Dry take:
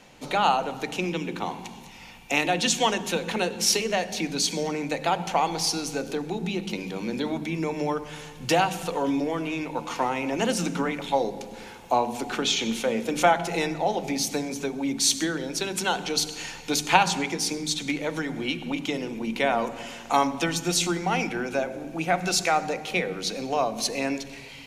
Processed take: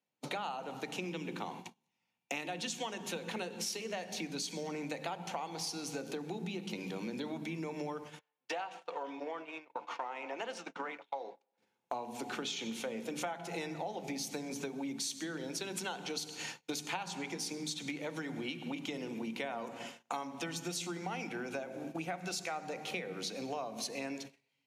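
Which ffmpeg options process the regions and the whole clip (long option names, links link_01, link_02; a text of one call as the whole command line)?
ffmpeg -i in.wav -filter_complex "[0:a]asettb=1/sr,asplit=3[link_01][link_02][link_03];[link_01]atrim=end=8.194[link_04];[link_02]atrim=start=8.19:end=11.58,asetpts=PTS-STARTPTS,afade=type=in:duration=0.004:curve=qsin,afade=type=out:start_time=3.386:duration=0.004:curve=qsin,highpass=620,adynamicsmooth=sensitivity=6.5:basefreq=5900,aemphasis=mode=reproduction:type=75kf[link_05];[link_03]atrim=start=11.576[link_06];[link_04][link_05]acrossfade=duration=0.004:curve1=hsin:curve2=qsin[link_07];[link_07][link_06]acrossfade=duration=0.004:curve1=qsin:curve2=hsin,agate=range=-36dB:threshold=-36dB:ratio=16:detection=peak,highpass=frequency=110:width=0.5412,highpass=frequency=110:width=1.3066,acompressor=threshold=-35dB:ratio=6,volume=-2dB" out.wav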